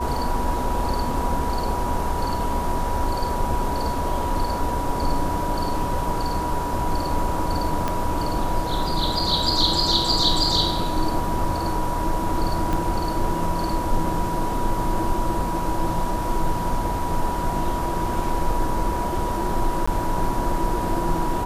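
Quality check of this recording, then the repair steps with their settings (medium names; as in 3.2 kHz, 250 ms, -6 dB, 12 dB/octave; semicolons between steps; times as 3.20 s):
whine 970 Hz -27 dBFS
7.88 s: pop -10 dBFS
12.73 s: pop
19.86–19.88 s: dropout 15 ms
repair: de-click; band-stop 970 Hz, Q 30; interpolate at 19.86 s, 15 ms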